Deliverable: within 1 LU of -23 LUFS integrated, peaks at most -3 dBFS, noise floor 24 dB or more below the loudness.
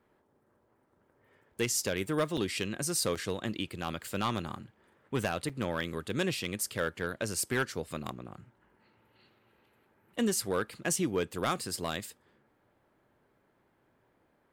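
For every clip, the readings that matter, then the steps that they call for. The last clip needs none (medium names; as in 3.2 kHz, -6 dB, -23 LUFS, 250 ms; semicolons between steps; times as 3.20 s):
clipped samples 0.3%; clipping level -22.0 dBFS; dropouts 3; longest dropout 6.2 ms; loudness -33.0 LUFS; peak level -22.0 dBFS; loudness target -23.0 LUFS
-> clip repair -22 dBFS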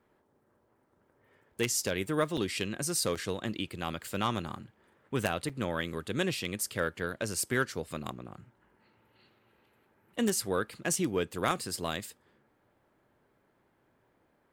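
clipped samples 0.0%; dropouts 3; longest dropout 6.2 ms
-> interpolate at 2.37/3.15/5.49 s, 6.2 ms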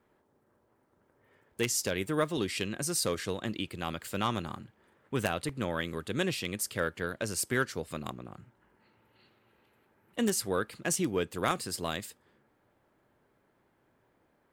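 dropouts 0; loudness -32.5 LUFS; peak level -13.0 dBFS; loudness target -23.0 LUFS
-> trim +9.5 dB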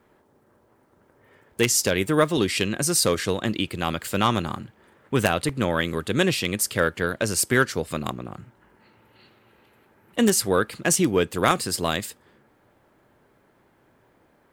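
loudness -23.0 LUFS; peak level -3.5 dBFS; noise floor -62 dBFS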